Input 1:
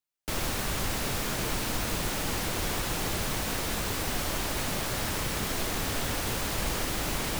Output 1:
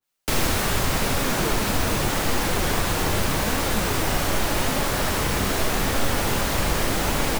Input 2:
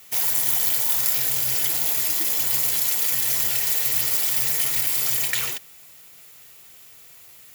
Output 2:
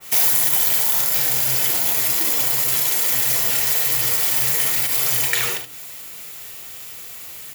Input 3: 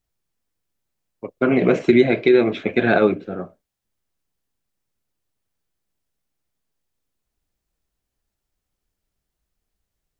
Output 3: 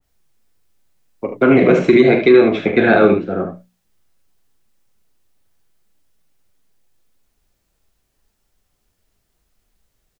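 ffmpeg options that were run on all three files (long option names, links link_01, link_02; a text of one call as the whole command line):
ffmpeg -i in.wav -filter_complex "[0:a]bandreject=frequency=60:width_type=h:width=6,bandreject=frequency=120:width_type=h:width=6,bandreject=frequency=180:width_type=h:width=6,bandreject=frequency=240:width_type=h:width=6,bandreject=frequency=300:width_type=h:width=6,aecho=1:1:40|74:0.335|0.376,asplit=2[link_01][link_02];[link_02]acompressor=threshold=-32dB:ratio=6,volume=0dB[link_03];[link_01][link_03]amix=inputs=2:normalize=0,flanger=delay=3.5:depth=7.4:regen=78:speed=0.83:shape=sinusoidal,acrossover=split=330|790[link_04][link_05][link_06];[link_05]asoftclip=type=tanh:threshold=-16dB[link_07];[link_04][link_07][link_06]amix=inputs=3:normalize=0,alimiter=level_in=9dB:limit=-1dB:release=50:level=0:latency=1,adynamicequalizer=threshold=0.02:dfrequency=2100:dqfactor=0.7:tfrequency=2100:tqfactor=0.7:attack=5:release=100:ratio=0.375:range=2:mode=cutabove:tftype=highshelf" out.wav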